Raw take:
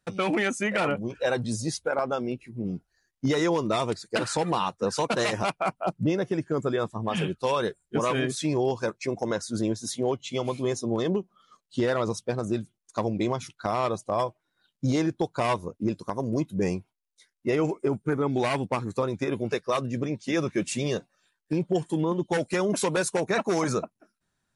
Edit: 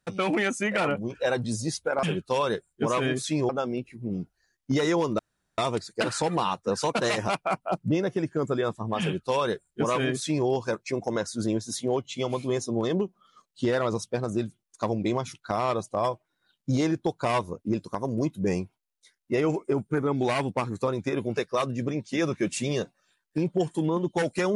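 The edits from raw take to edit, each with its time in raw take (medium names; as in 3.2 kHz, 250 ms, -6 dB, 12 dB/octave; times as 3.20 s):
3.73 s: insert room tone 0.39 s
7.16–8.62 s: copy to 2.03 s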